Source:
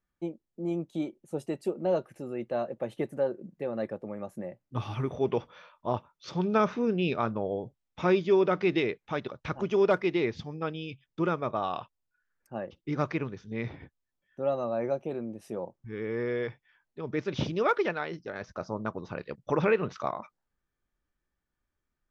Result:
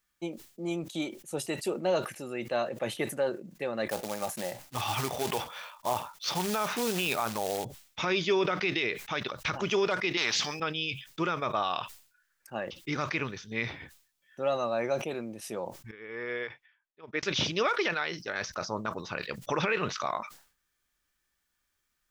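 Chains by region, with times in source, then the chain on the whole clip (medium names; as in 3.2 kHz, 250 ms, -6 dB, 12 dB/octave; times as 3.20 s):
3.89–7.65 s: short-mantissa float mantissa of 2-bit + peaking EQ 790 Hz +9 dB 0.72 oct
10.17–10.60 s: high-pass 180 Hz + spectrum-flattening compressor 2:1
15.91–17.23 s: tone controls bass -7 dB, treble -13 dB + upward expansion 2.5:1, over -54 dBFS
whole clip: tilt shelf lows -9 dB, about 1.2 kHz; peak limiter -23.5 dBFS; decay stretcher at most 120 dB/s; trim +5.5 dB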